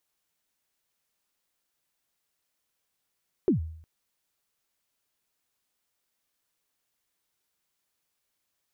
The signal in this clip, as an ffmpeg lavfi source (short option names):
-f lavfi -i "aevalsrc='0.15*pow(10,-3*t/0.64)*sin(2*PI*(420*0.119/log(80/420)*(exp(log(80/420)*min(t,0.119)/0.119)-1)+80*max(t-0.119,0)))':d=0.36:s=44100"